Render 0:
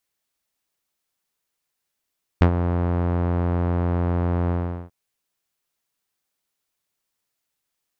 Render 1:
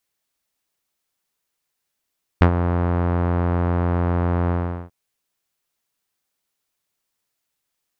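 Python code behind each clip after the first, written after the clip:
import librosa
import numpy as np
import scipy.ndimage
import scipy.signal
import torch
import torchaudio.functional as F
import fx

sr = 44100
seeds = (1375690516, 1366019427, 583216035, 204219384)

y = fx.dynamic_eq(x, sr, hz=1400.0, q=0.83, threshold_db=-43.0, ratio=4.0, max_db=4)
y = F.gain(torch.from_numpy(y), 1.5).numpy()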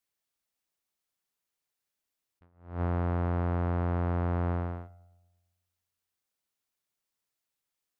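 y = fx.echo_filtered(x, sr, ms=113, feedback_pct=56, hz=1300.0, wet_db=-17.0)
y = fx.attack_slew(y, sr, db_per_s=140.0)
y = F.gain(torch.from_numpy(y), -8.5).numpy()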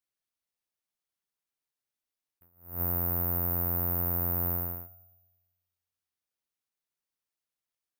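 y = (np.kron(scipy.signal.resample_poly(x, 1, 3), np.eye(3)[0]) * 3)[:len(x)]
y = F.gain(torch.from_numpy(y), -5.5).numpy()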